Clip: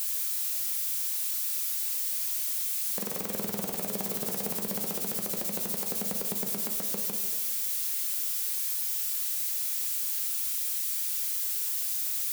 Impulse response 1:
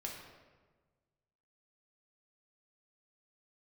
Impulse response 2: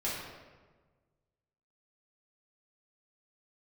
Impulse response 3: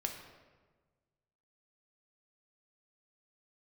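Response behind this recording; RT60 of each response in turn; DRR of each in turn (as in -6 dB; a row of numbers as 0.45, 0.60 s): 3; 1.4, 1.4, 1.4 s; -2.0, -8.5, 2.5 dB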